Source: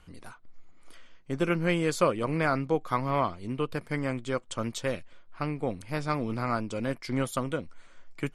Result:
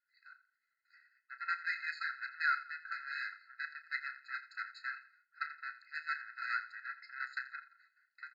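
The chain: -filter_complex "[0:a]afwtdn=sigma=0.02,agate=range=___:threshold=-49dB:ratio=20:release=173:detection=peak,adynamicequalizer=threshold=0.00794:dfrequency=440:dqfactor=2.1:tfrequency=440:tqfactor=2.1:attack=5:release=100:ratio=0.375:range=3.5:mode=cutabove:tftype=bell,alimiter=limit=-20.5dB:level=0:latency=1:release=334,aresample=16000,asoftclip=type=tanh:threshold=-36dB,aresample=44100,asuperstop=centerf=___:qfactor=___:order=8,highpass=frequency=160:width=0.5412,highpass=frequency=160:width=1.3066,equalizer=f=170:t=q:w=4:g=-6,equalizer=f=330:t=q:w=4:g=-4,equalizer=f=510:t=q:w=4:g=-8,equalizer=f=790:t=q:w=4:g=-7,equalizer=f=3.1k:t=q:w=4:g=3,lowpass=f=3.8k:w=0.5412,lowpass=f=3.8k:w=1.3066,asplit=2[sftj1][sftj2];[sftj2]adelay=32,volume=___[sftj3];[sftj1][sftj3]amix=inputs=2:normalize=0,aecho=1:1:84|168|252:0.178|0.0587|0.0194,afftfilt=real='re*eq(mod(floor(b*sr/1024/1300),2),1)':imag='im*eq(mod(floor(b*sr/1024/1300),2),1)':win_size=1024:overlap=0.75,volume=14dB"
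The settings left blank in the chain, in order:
-16dB, 2300, 4.9, -10.5dB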